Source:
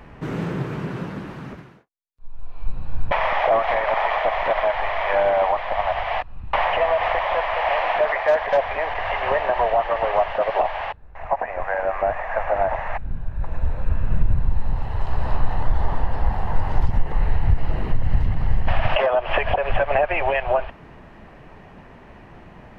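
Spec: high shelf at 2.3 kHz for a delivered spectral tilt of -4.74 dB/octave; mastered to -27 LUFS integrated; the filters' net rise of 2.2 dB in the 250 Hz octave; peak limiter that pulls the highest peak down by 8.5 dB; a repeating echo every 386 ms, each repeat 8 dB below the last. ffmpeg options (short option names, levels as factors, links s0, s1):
-af "equalizer=f=250:t=o:g=3.5,highshelf=f=2300:g=-4.5,alimiter=limit=0.224:level=0:latency=1,aecho=1:1:386|772|1158|1544|1930:0.398|0.159|0.0637|0.0255|0.0102,volume=0.75"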